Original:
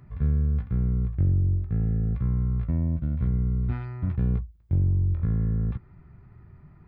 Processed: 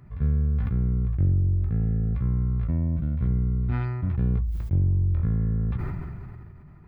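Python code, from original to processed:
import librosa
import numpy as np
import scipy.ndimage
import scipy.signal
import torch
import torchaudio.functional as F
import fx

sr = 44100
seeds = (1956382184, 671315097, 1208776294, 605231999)

y = fx.sustainer(x, sr, db_per_s=24.0)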